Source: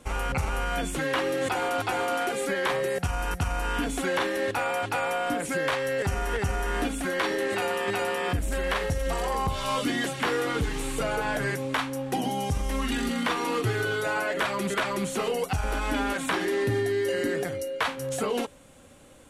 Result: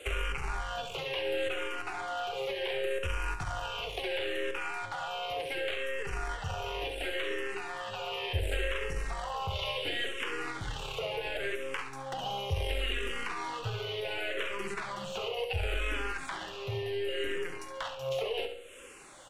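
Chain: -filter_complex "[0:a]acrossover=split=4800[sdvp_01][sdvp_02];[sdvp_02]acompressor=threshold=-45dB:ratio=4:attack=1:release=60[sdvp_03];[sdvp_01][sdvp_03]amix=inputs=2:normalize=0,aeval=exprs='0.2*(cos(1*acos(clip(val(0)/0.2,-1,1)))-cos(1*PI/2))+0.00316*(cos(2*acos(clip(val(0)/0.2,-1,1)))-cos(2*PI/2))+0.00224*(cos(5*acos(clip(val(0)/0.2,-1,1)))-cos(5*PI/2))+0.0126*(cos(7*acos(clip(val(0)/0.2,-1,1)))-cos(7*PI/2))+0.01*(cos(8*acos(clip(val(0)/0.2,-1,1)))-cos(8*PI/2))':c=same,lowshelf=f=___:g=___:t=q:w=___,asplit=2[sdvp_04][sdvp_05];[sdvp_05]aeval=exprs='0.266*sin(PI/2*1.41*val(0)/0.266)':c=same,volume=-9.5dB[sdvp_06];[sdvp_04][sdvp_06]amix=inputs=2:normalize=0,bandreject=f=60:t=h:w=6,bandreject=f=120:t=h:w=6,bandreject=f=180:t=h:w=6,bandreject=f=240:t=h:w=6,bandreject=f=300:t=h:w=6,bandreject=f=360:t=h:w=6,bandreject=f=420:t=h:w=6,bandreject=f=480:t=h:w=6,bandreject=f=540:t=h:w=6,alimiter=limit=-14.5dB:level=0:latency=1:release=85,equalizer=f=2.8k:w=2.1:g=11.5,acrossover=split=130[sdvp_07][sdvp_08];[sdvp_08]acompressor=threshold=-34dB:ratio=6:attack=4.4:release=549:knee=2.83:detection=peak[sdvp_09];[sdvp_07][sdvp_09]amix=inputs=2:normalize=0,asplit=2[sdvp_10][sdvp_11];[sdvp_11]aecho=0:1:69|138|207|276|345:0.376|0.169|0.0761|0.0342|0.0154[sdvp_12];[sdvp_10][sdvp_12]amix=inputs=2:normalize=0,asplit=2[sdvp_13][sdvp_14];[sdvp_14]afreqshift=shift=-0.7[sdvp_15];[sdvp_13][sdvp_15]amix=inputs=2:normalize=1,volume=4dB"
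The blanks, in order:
320, -8.5, 3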